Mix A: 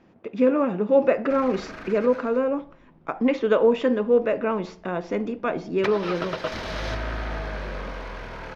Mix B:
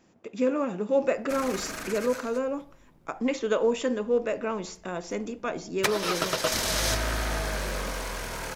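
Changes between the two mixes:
speech −6.5 dB
master: remove high-frequency loss of the air 280 metres

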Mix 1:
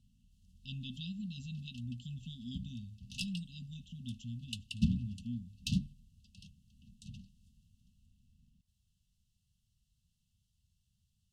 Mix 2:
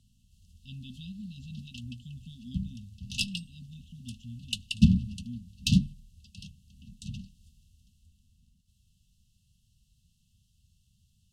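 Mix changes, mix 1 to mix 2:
speech: add high-shelf EQ 3,700 Hz −8.5 dB
background +10.0 dB

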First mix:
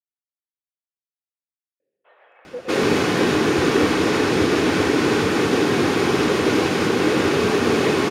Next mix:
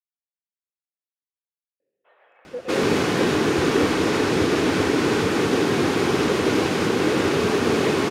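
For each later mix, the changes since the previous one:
first sound −4.0 dB
second sound: send −6.5 dB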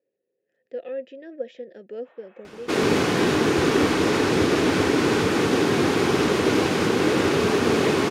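speech: entry −1.80 s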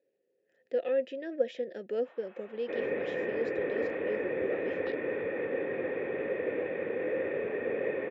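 speech +3.5 dB
second sound: add formant resonators in series e
master: add low-shelf EQ 210 Hz −6 dB

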